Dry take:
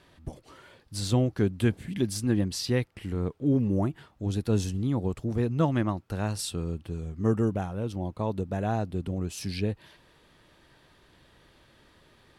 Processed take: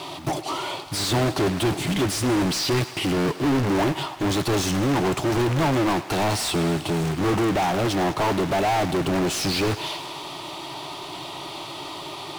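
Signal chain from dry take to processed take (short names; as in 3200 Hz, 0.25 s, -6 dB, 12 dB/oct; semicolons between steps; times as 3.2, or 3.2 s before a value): fixed phaser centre 330 Hz, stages 8; short-mantissa float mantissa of 2-bit; overdrive pedal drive 40 dB, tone 3200 Hz, clips at -14.5 dBFS; on a send: thinning echo 0.104 s, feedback 79%, high-pass 420 Hz, level -15 dB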